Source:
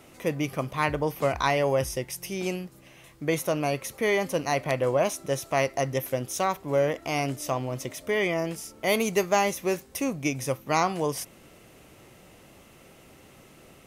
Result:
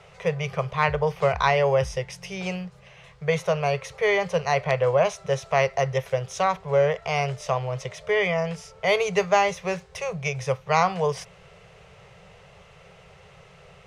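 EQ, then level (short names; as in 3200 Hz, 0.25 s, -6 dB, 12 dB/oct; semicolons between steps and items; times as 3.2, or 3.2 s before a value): elliptic band-stop 180–420 Hz; air absorption 120 m; +5.0 dB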